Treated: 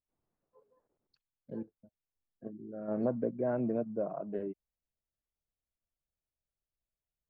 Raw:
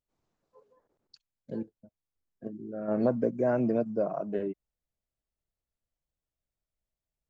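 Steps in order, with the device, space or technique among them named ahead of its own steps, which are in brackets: 1.56–2.51 s: dynamic bell 1.2 kHz, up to +5 dB, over -55 dBFS, Q 0.89; phone in a pocket (low-pass 3.9 kHz; treble shelf 2.3 kHz -10 dB); trim -5 dB

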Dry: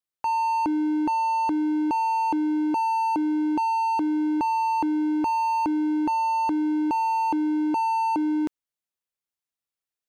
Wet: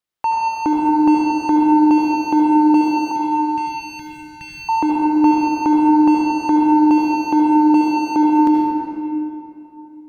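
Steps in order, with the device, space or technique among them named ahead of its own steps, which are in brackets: 3.11–4.69 s: elliptic band-stop 150–1800 Hz; swimming-pool hall (reverberation RT60 2.8 s, pre-delay 67 ms, DRR -2.5 dB; treble shelf 5.7 kHz -7.5 dB); trim +7 dB

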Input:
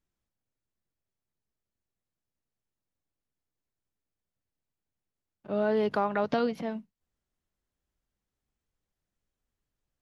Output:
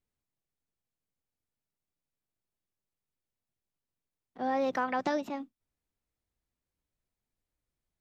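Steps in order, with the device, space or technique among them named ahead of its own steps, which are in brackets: nightcore (tape speed +25%); trim -3 dB

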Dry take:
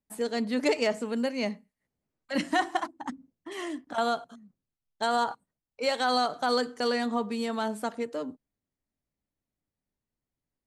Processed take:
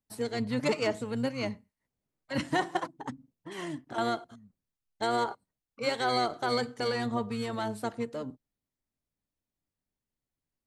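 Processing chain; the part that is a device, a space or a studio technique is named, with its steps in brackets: octave pedal (harmony voices -12 st -7 dB); trim -3 dB

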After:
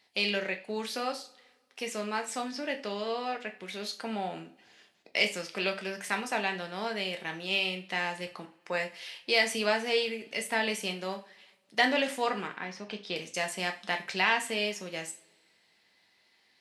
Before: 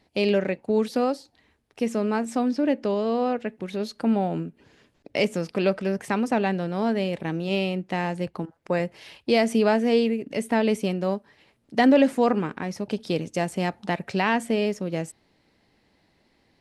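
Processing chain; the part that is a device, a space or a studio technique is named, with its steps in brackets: 12.47–13.16 s: Bessel low-pass 3.2 kHz, order 2; filter by subtraction (in parallel: low-pass 2.9 kHz 12 dB/octave + polarity flip); on the sum: bass shelf 320 Hz +4.5 dB; two-slope reverb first 0.32 s, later 1.8 s, from -27 dB, DRR 4 dB

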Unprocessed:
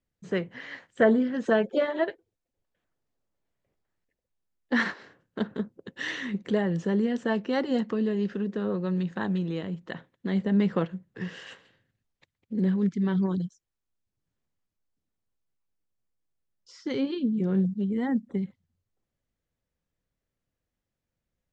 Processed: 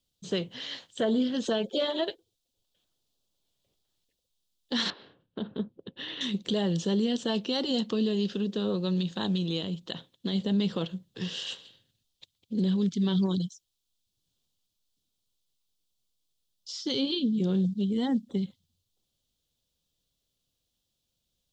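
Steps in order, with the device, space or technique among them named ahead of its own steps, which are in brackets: over-bright horn tweeter (resonant high shelf 2.6 kHz +10 dB, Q 3; peak limiter -19 dBFS, peak gain reduction 8 dB); 4.90–6.21 s: distance through air 450 m

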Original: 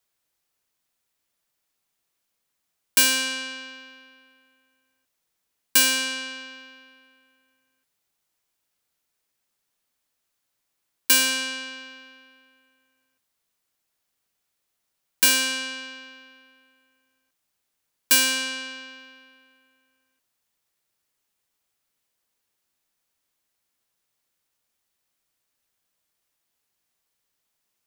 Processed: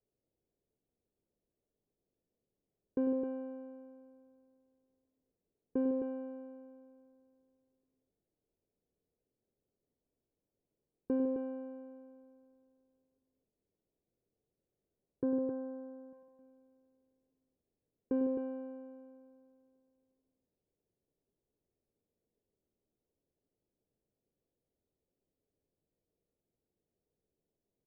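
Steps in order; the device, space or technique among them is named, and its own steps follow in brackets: under water (low-pass 530 Hz 24 dB/octave; peaking EQ 420 Hz +4 dB 0.4 oct); 15.23–16.13 s: Chebyshev band-pass 110–1500 Hz, order 3; loudspeakers at several distances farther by 34 m -11 dB, 53 m -11 dB, 90 m -6 dB; trim +2.5 dB

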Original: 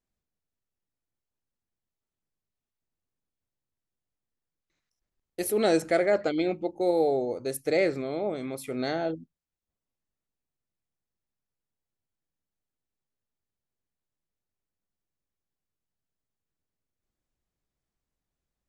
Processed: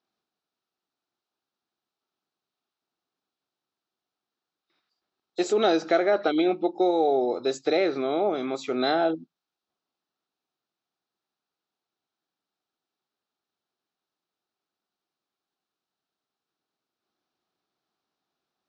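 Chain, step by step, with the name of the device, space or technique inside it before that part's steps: hearing aid with frequency lowering (knee-point frequency compression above 3.4 kHz 1.5:1; compression 3:1, threshold -26 dBFS, peak gain reduction 6.5 dB; cabinet simulation 280–5400 Hz, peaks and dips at 360 Hz +3 dB, 530 Hz -5 dB, 760 Hz +5 dB, 1.3 kHz +6 dB, 2 kHz -6 dB, 3.9 kHz +5 dB); trim +7 dB

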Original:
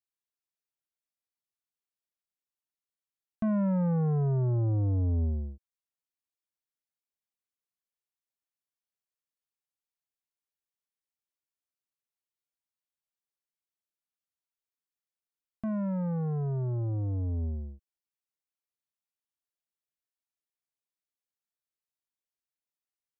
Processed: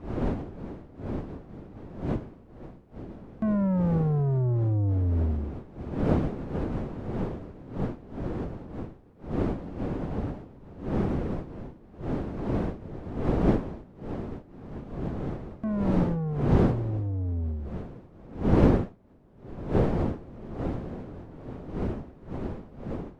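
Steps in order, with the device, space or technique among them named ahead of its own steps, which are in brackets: smartphone video outdoors (wind noise 310 Hz -31 dBFS; level rider gain up to 7.5 dB; trim -5.5 dB; AAC 96 kbps 44.1 kHz)

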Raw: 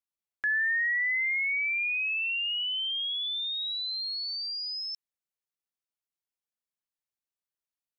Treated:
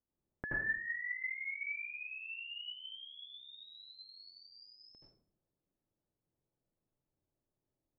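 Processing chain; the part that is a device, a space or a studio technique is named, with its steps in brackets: television next door (compression, threshold -31 dBFS, peak gain reduction 5.5 dB; low-pass 400 Hz 12 dB/octave; reverberation RT60 0.55 s, pre-delay 73 ms, DRR -5 dB); trim +14.5 dB

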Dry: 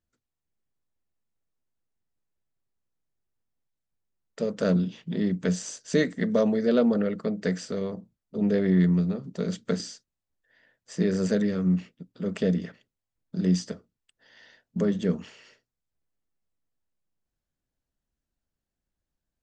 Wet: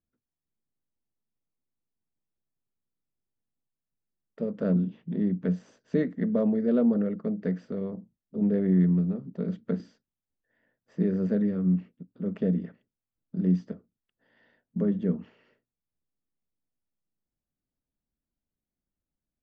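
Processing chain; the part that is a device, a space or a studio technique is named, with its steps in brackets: phone in a pocket (low-pass 3 kHz 12 dB/octave; peaking EQ 230 Hz +6 dB 1.4 oct; treble shelf 2.1 kHz -11 dB); trim -5.5 dB

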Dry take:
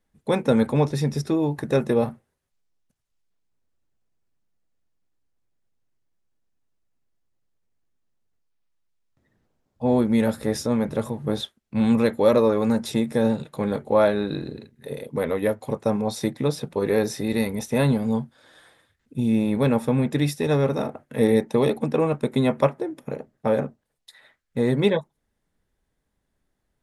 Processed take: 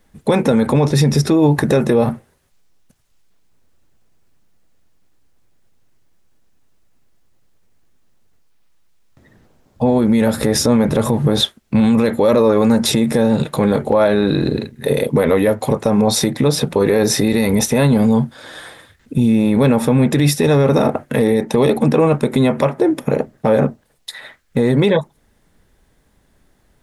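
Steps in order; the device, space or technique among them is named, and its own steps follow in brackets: loud club master (compression 3:1, threshold -23 dBFS, peak gain reduction 8.5 dB; hard clipper -14.5 dBFS, distortion -39 dB; loudness maximiser +22.5 dB); trim -4.5 dB

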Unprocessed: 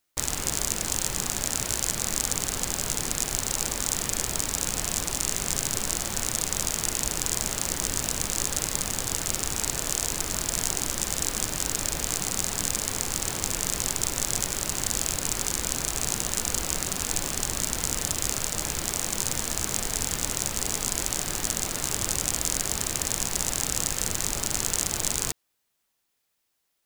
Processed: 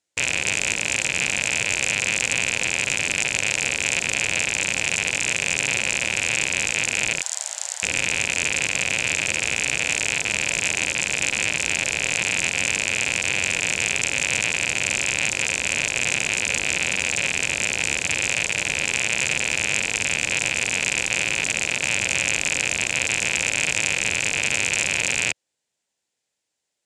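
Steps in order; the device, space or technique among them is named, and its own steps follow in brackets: 7.19–7.83 s: steep high-pass 630 Hz 48 dB/octave; car door speaker with a rattle (rattle on loud lows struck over -47 dBFS, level -7 dBFS; cabinet simulation 83–8900 Hz, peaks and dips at 530 Hz +5 dB, 1.2 kHz -9 dB, 7.3 kHz +5 dB); trim -1.5 dB

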